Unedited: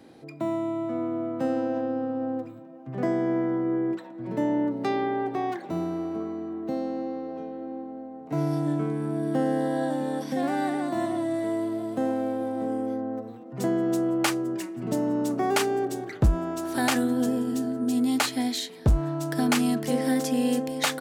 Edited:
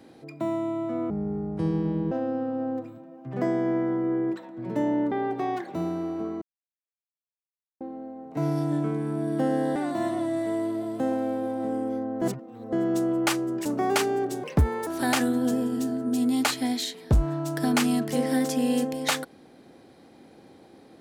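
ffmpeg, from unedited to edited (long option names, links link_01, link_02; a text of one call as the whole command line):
ffmpeg -i in.wav -filter_complex "[0:a]asplit=12[link_01][link_02][link_03][link_04][link_05][link_06][link_07][link_08][link_09][link_10][link_11][link_12];[link_01]atrim=end=1.104[link_13];[link_02]atrim=start=1.1:end=1.73,asetpts=PTS-STARTPTS,asetrate=27342,aresample=44100,atrim=end_sample=44811,asetpts=PTS-STARTPTS[link_14];[link_03]atrim=start=1.726:end=4.732[link_15];[link_04]atrim=start=5.068:end=6.37,asetpts=PTS-STARTPTS,afade=type=out:start_time=1.298:duration=0.004:curve=hsin[link_16];[link_05]atrim=start=6.37:end=7.76,asetpts=PTS-STARTPTS,volume=0[link_17];[link_06]atrim=start=7.76:end=9.712,asetpts=PTS-STARTPTS,afade=type=in:duration=0.004:curve=hsin[link_18];[link_07]atrim=start=10.728:end=13.192[link_19];[link_08]atrim=start=13.188:end=13.702,asetpts=PTS-STARTPTS,areverse[link_20];[link_09]atrim=start=13.698:end=14.632[link_21];[link_10]atrim=start=15.258:end=16.044[link_22];[link_11]atrim=start=16.04:end=16.62,asetpts=PTS-STARTPTS,asetrate=59094,aresample=44100,atrim=end_sample=19088,asetpts=PTS-STARTPTS[link_23];[link_12]atrim=start=16.616[link_24];[link_13][link_14]acrossfade=duration=0.004:curve1=hsin:curve2=hsin[link_25];[link_25][link_15]acrossfade=duration=0.004:curve1=hsin:curve2=hsin[link_26];[link_16][link_17][link_18]concat=n=3:v=0:a=1[link_27];[link_26][link_27]acrossfade=duration=0.004:curve1=hsin:curve2=hsin[link_28];[link_28][link_19]acrossfade=duration=0.004:curve1=hsin:curve2=hsin[link_29];[link_29][link_20]acrossfade=duration=0.004:curve1=hsin:curve2=hsin[link_30];[link_30][link_21]acrossfade=duration=0.004:curve1=hsin:curve2=hsin[link_31];[link_31][link_22]acrossfade=duration=0.004:curve1=hsin:curve2=hsin[link_32];[link_32][link_23]acrossfade=duration=0.004:curve1=hsin:curve2=hsin[link_33];[link_33][link_24]acrossfade=duration=0.004:curve1=hsin:curve2=hsin" out.wav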